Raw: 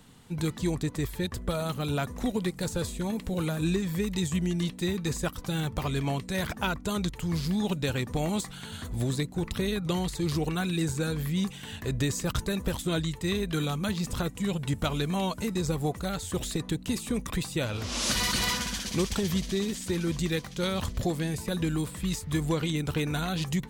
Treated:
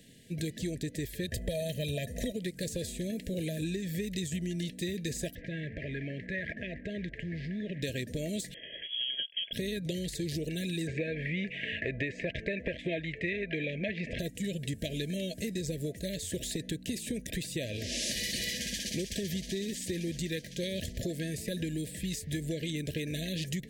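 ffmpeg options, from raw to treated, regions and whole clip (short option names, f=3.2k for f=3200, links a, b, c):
-filter_complex "[0:a]asettb=1/sr,asplit=3[a][b][c];[a]atrim=end=1.284[d];[b]atrim=start=1.28:end=2.33,asetpts=PTS-STARTPTS,afade=t=in:d=0.004:c=qsin,afade=t=out:st=1.046:d=0.004:c=qsin,bandreject=f=5.2k:w=16,acontrast=26,aecho=1:1:1.6:0.55,atrim=end_sample=46305[e];[c]atrim=start=2.326[f];[d][e]acrossfade=d=0.004:c1=hsin:c2=qsin[g];[g][f]acrossfade=d=0.004:c1=qsin:c2=hsin,asettb=1/sr,asplit=3[h][i][j];[h]atrim=end=5.354[k];[i]atrim=start=5.35:end=7.82,asetpts=PTS-STARTPTS,afade=t=in:d=0.004:c=qsin,afade=t=out:st=2.466:d=0.004:c=qsin,acompressor=threshold=-31dB:ratio=5:attack=3.2:release=140:knee=1:detection=peak,acrusher=bits=7:mix=0:aa=0.5,lowpass=f=1.9k:t=q:w=2.8[l];[j]atrim=start=7.816[m];[k][l]acrossfade=d=0.004:c1=hsin:c2=qsin[n];[n][m]acrossfade=d=0.004:c1=qsin:c2=hsin,asettb=1/sr,asplit=3[o][p][q];[o]atrim=end=8.544[r];[p]atrim=start=8.54:end=9.53,asetpts=PTS-STARTPTS,afade=t=in:d=0.004:c=qsin,afade=t=out:st=0.986:d=0.004:c=qsin,aemphasis=mode=production:type=75kf,aeval=exprs='sgn(val(0))*max(abs(val(0))-0.00841,0)':c=same,lowpass=f=2.9k:t=q:w=0.5098,lowpass=f=2.9k:t=q:w=0.6013,lowpass=f=2.9k:t=q:w=0.9,lowpass=f=2.9k:t=q:w=2.563,afreqshift=-3400[s];[q]atrim=start=9.526[t];[r][s]acrossfade=d=0.004:c1=hsin:c2=qsin[u];[u][t]acrossfade=d=0.004:c1=qsin:c2=hsin,asettb=1/sr,asplit=3[v][w][x];[v]atrim=end=10.874[y];[w]atrim=start=10.87:end=14.19,asetpts=PTS-STARTPTS,afade=t=in:d=0.004:c=qsin,afade=t=out:st=3.316:d=0.004:c=qsin,lowpass=f=2.3k:t=q:w=4.4,equalizer=f=830:w=0.64:g=12[z];[x]atrim=start=14.186[aa];[y][z]acrossfade=d=0.004:c1=hsin:c2=qsin[ab];[ab][aa]acrossfade=d=0.004:c1=qsin:c2=hsin,lowshelf=f=110:g=-8.5,afftfilt=real='re*(1-between(b*sr/4096,680,1600))':imag='im*(1-between(b*sr/4096,680,1600))':win_size=4096:overlap=0.75,acompressor=threshold=-31dB:ratio=6"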